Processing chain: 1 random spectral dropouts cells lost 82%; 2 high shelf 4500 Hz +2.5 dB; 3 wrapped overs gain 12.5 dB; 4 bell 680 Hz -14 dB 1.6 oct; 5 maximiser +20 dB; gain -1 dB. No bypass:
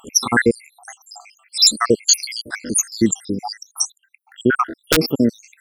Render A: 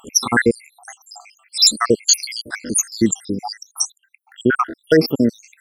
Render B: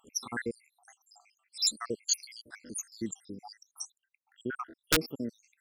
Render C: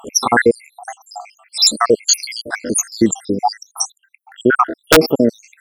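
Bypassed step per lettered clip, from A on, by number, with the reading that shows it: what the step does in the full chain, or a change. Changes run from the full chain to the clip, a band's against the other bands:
3, distortion -2 dB; 5, crest factor change +9.0 dB; 4, 1 kHz band +5.5 dB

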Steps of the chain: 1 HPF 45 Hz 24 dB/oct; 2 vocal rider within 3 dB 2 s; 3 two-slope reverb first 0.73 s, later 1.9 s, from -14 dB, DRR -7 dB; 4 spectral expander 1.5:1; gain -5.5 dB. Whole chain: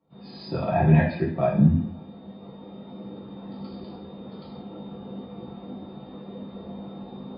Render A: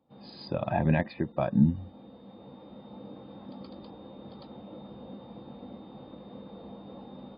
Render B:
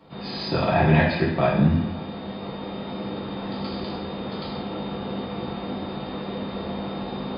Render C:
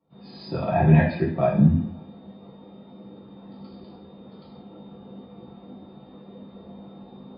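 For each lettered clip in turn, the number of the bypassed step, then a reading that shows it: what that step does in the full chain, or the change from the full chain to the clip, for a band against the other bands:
3, 125 Hz band -3.0 dB; 4, 4 kHz band +9.5 dB; 2, momentary loudness spread change -7 LU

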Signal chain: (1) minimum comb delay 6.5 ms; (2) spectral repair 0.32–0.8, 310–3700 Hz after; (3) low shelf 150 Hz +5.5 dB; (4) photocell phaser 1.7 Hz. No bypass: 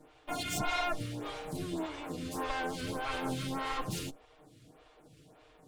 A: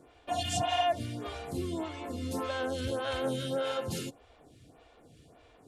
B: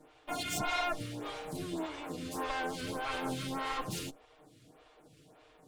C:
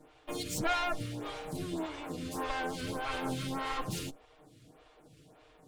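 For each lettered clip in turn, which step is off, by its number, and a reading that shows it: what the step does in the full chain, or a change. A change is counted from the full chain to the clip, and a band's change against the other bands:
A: 1, 500 Hz band +5.0 dB; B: 3, 125 Hz band -3.0 dB; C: 2, crest factor change +1.5 dB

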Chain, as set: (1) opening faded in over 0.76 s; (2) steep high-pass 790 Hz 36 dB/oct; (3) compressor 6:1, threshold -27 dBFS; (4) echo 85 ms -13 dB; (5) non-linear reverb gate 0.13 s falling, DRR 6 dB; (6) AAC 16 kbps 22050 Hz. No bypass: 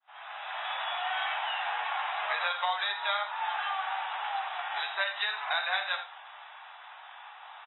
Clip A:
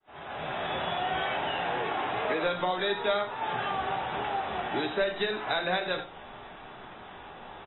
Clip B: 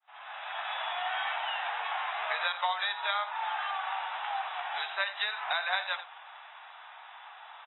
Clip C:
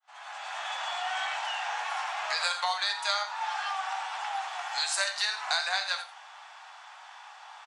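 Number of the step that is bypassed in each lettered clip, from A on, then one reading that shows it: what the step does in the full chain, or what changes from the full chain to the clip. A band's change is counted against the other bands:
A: 2, 500 Hz band +14.0 dB; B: 5, crest factor change +1.5 dB; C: 6, 4 kHz band +3.5 dB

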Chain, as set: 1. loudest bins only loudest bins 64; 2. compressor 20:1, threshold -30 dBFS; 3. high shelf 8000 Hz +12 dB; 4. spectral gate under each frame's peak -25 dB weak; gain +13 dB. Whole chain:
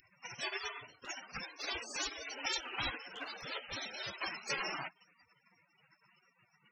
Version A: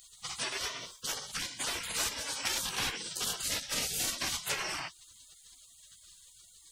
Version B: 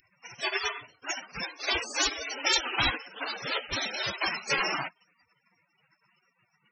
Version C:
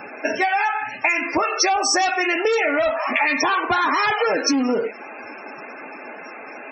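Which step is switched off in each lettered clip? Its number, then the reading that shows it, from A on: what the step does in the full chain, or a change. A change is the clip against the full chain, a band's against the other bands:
1, 8 kHz band +10.5 dB; 2, mean gain reduction 5.5 dB; 4, 125 Hz band -13.0 dB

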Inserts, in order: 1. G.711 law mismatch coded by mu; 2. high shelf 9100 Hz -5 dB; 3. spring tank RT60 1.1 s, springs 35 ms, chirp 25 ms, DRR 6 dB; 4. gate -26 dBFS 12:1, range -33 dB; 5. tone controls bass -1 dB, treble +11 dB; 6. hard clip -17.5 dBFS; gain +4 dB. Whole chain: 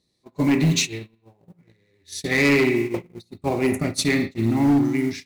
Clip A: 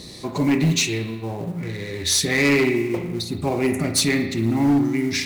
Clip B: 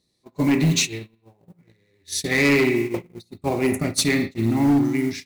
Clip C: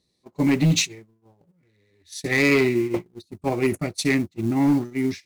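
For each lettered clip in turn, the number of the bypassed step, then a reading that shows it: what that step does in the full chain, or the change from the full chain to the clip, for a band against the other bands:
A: 4, momentary loudness spread change -2 LU; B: 2, 8 kHz band +3.0 dB; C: 3, momentary loudness spread change -2 LU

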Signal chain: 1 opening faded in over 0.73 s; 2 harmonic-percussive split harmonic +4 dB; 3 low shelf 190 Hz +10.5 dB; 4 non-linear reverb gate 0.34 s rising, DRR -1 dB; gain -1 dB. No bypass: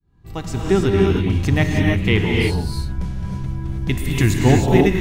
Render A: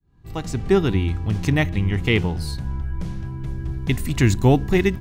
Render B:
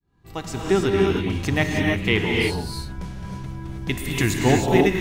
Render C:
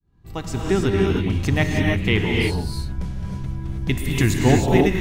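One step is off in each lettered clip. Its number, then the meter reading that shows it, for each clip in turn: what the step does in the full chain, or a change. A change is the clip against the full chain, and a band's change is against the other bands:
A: 4, loudness change -3.0 LU; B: 3, 125 Hz band -7.0 dB; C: 2, 125 Hz band -2.0 dB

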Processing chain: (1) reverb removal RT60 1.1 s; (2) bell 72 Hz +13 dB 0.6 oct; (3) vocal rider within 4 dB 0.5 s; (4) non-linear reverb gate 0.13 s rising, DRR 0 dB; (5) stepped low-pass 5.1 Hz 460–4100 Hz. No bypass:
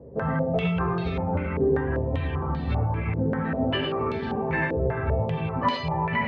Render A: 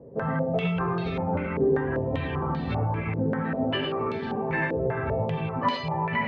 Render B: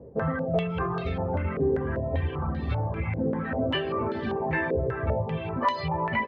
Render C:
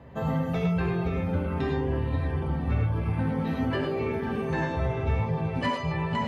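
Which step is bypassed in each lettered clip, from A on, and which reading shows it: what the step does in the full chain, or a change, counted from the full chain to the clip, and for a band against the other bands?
2, 125 Hz band -2.0 dB; 4, loudness change -2.0 LU; 5, 125 Hz band +4.0 dB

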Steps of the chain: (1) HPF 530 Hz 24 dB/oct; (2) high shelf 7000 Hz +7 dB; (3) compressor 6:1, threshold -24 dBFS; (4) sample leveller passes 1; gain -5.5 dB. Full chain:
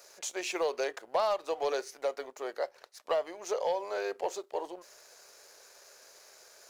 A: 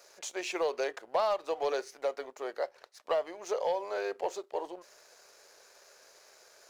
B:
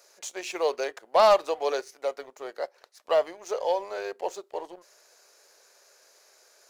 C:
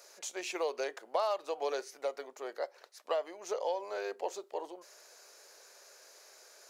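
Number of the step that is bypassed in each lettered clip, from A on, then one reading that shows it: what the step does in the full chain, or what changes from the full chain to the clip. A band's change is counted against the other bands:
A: 2, 8 kHz band -3.5 dB; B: 3, mean gain reduction 1.5 dB; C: 4, crest factor change +3.0 dB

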